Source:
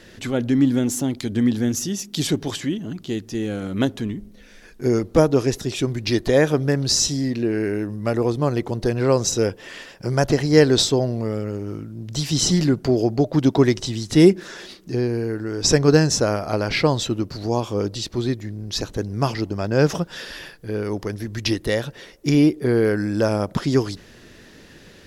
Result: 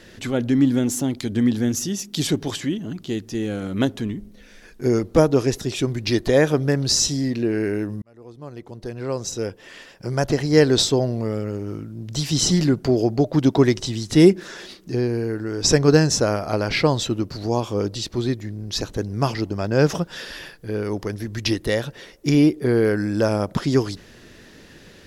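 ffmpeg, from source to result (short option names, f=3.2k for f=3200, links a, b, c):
-filter_complex "[0:a]asplit=2[a][b];[a]atrim=end=8.02,asetpts=PTS-STARTPTS,afade=t=out:st=8.016:d=0.004:c=hsin[c];[b]atrim=start=8.02,asetpts=PTS-STARTPTS,afade=t=in:d=2.93[d];[c][d]concat=n=2:v=0:a=1"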